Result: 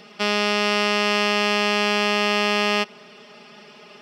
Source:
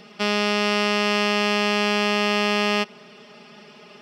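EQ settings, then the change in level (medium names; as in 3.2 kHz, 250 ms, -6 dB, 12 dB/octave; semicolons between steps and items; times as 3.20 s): bass shelf 230 Hz -6 dB; +1.5 dB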